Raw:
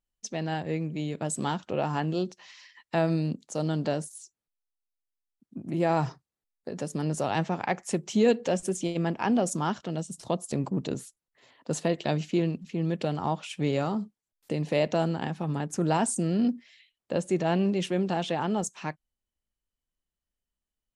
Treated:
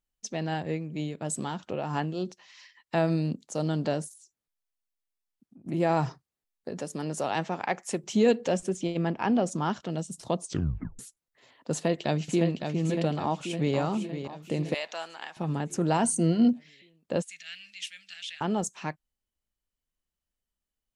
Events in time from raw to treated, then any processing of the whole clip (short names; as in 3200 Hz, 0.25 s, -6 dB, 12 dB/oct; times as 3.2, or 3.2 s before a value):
0.69–2.95 tremolo 3.1 Hz, depth 45%
4.13–5.66 compressor 4:1, threshold -52 dBFS
6.8–8.04 HPF 280 Hz 6 dB/oct
8.63–9.7 air absorption 69 m
10.39 tape stop 0.60 s
11.72–12.58 echo throw 0.56 s, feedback 60%, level -6 dB
13.22–13.76 echo throw 0.51 s, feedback 50%, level -9.5 dB
14.74–15.37 HPF 1200 Hz
16.03–16.53 ripple EQ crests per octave 1.9, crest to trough 10 dB
17.22–18.41 inverse Chebyshev high-pass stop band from 1000 Hz